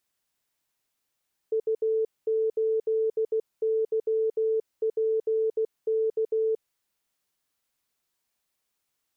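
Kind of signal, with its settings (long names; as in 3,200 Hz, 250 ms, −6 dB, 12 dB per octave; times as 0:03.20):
Morse code "U8YPK" 16 words per minute 442 Hz −22 dBFS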